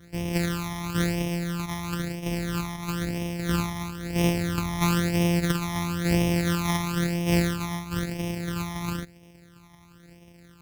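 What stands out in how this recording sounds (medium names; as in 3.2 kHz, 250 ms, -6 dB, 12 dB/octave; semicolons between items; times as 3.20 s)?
a buzz of ramps at a fixed pitch in blocks of 256 samples; phasing stages 12, 1 Hz, lowest notch 470–1400 Hz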